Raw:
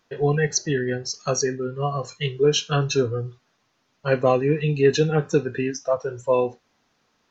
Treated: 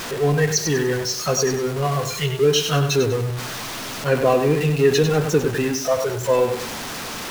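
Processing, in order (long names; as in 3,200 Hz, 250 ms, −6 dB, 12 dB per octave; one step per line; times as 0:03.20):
converter with a step at zero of −24.5 dBFS
feedback echo at a low word length 98 ms, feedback 35%, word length 6 bits, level −7 dB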